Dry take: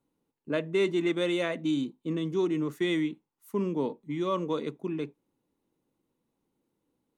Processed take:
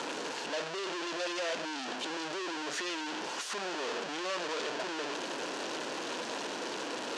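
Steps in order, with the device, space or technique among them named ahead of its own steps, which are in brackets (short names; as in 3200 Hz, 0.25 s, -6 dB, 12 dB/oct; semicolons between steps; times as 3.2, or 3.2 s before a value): home computer beeper (infinite clipping; speaker cabinet 680–5900 Hz, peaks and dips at 820 Hz -6 dB, 1200 Hz -7 dB, 2100 Hz -8 dB, 3700 Hz -4 dB, 5200 Hz -3 dB); gain +4.5 dB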